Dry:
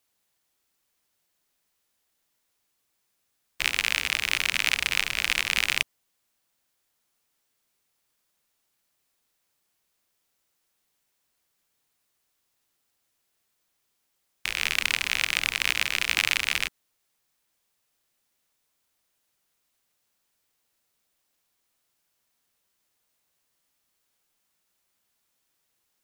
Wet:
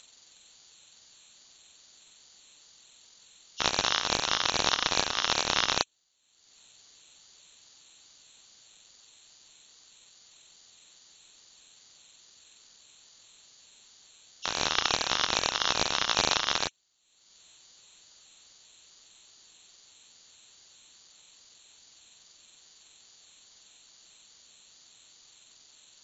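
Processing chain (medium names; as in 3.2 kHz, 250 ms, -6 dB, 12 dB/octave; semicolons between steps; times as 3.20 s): knee-point frequency compression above 3.9 kHz 4:1; upward compressor, threshold -40 dBFS; ring modulator with a swept carrier 1.4 kHz, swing 20%, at 2.4 Hz; trim +1 dB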